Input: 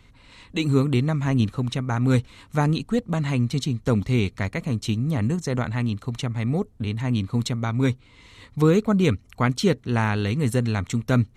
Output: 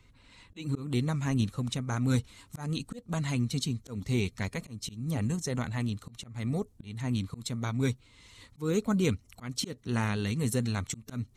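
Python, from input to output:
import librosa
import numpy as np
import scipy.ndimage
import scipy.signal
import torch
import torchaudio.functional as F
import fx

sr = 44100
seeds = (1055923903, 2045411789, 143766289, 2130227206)

y = fx.spec_quant(x, sr, step_db=15)
y = fx.bass_treble(y, sr, bass_db=1, treble_db=fx.steps((0.0, 3.0), (0.86, 10.0)))
y = fx.auto_swell(y, sr, attack_ms=224.0)
y = y * librosa.db_to_amplitude(-7.5)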